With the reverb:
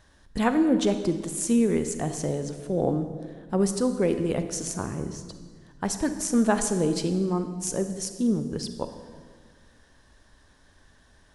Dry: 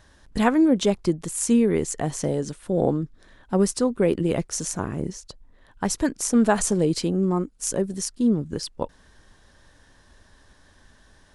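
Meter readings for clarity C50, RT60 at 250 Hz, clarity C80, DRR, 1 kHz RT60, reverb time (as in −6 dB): 9.5 dB, 2.0 s, 11.0 dB, 8.5 dB, 1.5 s, 1.6 s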